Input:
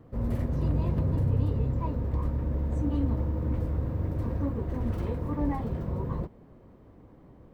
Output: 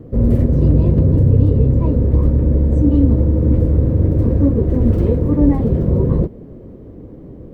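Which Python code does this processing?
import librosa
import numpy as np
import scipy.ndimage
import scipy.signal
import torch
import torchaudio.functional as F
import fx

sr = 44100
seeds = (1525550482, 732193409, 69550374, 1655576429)

p1 = fx.low_shelf_res(x, sr, hz=640.0, db=10.0, q=1.5)
p2 = fx.rider(p1, sr, range_db=10, speed_s=0.5)
p3 = p1 + (p2 * 10.0 ** (-0.5 / 20.0))
y = p3 * 10.0 ** (-1.0 / 20.0)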